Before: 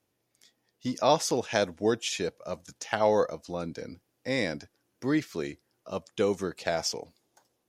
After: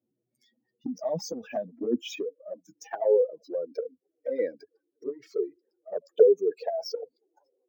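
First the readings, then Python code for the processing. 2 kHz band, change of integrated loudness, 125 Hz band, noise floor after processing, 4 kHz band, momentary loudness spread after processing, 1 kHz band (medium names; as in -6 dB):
-13.0 dB, +1.0 dB, under -10 dB, -82 dBFS, -9.5 dB, 19 LU, -9.5 dB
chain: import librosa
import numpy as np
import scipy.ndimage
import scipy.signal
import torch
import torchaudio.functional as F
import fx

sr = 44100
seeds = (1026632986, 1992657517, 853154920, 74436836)

y = fx.spec_expand(x, sr, power=2.9)
y = scipy.signal.sosfilt(scipy.signal.butter(2, 110.0, 'highpass', fs=sr, output='sos'), y)
y = fx.filter_sweep_highpass(y, sr, from_hz=190.0, to_hz=440.0, start_s=1.02, end_s=3.74, q=6.4)
y = fx.env_flanger(y, sr, rest_ms=8.1, full_db=-15.5)
y = np.interp(np.arange(len(y)), np.arange(len(y))[::2], y[::2])
y = y * librosa.db_to_amplitude(-3.0)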